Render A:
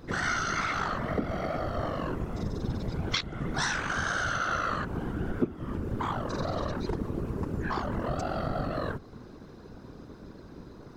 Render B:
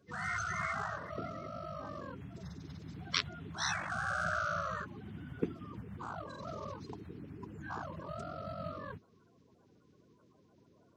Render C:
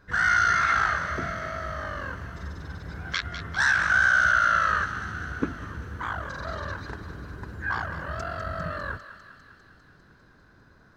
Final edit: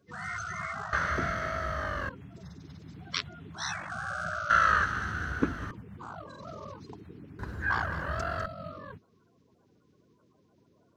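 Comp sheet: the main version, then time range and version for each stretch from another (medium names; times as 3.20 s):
B
0.93–2.09 s: from C
4.50–5.71 s: from C
7.39–8.46 s: from C
not used: A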